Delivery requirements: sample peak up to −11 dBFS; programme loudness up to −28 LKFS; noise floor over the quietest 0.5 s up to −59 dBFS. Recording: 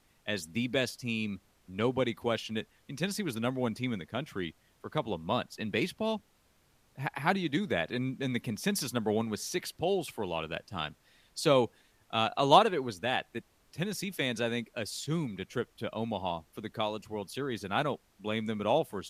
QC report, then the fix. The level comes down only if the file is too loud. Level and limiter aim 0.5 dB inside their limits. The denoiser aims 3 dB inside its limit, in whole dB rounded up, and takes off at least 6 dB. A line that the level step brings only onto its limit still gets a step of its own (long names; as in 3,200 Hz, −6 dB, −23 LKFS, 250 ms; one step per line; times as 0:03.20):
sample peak −7.0 dBFS: out of spec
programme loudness −32.5 LKFS: in spec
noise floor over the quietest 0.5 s −68 dBFS: in spec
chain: brickwall limiter −11.5 dBFS